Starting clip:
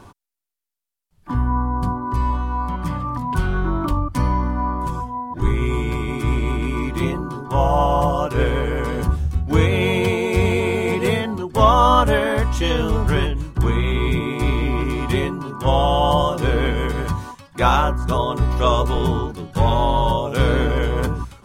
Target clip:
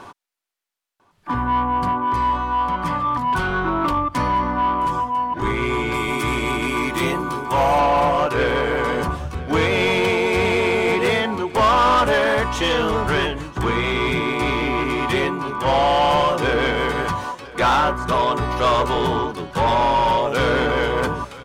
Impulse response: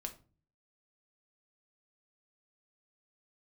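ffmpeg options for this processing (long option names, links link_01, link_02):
-filter_complex "[0:a]asettb=1/sr,asplit=3[link_01][link_02][link_03];[link_01]atrim=end=5.944[link_04];[link_02]atrim=start=5.94:end=7.8,asetpts=PTS-STARTPTS,afade=type=in:duration=0.004:curve=qsin,afade=type=out:start_time=1.856:duration=0.004:curve=qsin,aemphasis=mode=production:type=50kf[link_05];[link_03]atrim=start=7.796[link_06];[link_04][link_05]acrossfade=duration=0.004:curve1=hsin:curve2=qsin[link_07];[link_07][link_06]acrossfade=duration=0.004:curve1=qsin:curve2=hsin,asplit=2[link_08][link_09];[link_09]highpass=frequency=720:poles=1,volume=23dB,asoftclip=type=tanh:threshold=-1.5dB[link_10];[link_08][link_10]amix=inputs=2:normalize=0,lowpass=frequency=2900:poles=1,volume=-6dB,asplit=2[link_11][link_12];[link_12]aecho=0:1:998:0.106[link_13];[link_11][link_13]amix=inputs=2:normalize=0,volume=-7dB"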